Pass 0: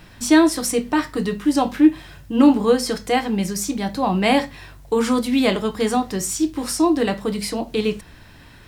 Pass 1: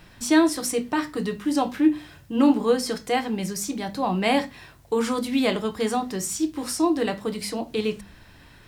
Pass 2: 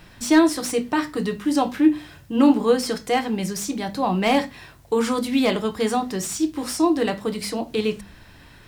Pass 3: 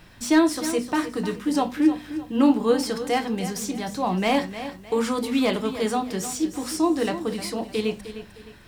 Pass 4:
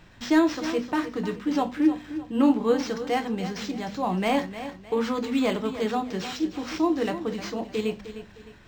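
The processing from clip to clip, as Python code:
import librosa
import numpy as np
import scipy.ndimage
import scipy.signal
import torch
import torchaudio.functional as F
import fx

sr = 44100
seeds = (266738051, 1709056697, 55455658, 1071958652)

y1 = fx.hum_notches(x, sr, base_hz=50, count=6)
y1 = F.gain(torch.from_numpy(y1), -4.0).numpy()
y2 = fx.slew_limit(y1, sr, full_power_hz=260.0)
y2 = F.gain(torch.from_numpy(y2), 2.5).numpy()
y3 = fx.echo_feedback(y2, sr, ms=306, feedback_pct=35, wet_db=-12.0)
y3 = F.gain(torch.from_numpy(y3), -2.5).numpy()
y4 = np.interp(np.arange(len(y3)), np.arange(len(y3))[::4], y3[::4])
y4 = F.gain(torch.from_numpy(y4), -2.0).numpy()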